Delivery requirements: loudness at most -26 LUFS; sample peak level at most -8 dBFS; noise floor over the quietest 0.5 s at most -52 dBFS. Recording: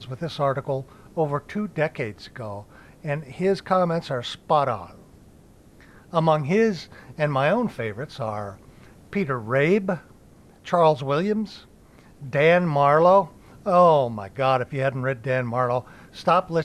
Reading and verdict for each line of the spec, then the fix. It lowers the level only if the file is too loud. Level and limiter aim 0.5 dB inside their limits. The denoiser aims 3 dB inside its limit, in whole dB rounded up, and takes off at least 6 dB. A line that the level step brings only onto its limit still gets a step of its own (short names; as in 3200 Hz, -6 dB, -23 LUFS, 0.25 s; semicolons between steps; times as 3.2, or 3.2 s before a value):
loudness -23.0 LUFS: fail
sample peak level -6.5 dBFS: fail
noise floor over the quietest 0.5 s -51 dBFS: fail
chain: gain -3.5 dB